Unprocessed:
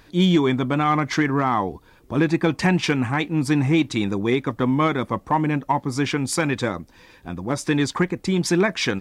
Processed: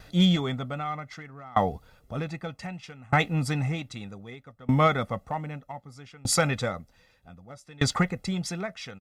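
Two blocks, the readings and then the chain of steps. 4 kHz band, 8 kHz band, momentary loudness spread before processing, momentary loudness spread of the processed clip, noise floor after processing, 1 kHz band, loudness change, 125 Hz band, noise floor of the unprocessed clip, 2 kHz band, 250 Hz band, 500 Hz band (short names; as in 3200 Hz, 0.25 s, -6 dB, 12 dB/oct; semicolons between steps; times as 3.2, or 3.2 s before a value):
-4.0 dB, -2.0 dB, 7 LU, 20 LU, -62 dBFS, -6.0 dB, -6.0 dB, -4.5 dB, -53 dBFS, -7.0 dB, -9.5 dB, -7.5 dB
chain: comb 1.5 ms, depth 73%; dB-ramp tremolo decaying 0.64 Hz, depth 28 dB; gain +1 dB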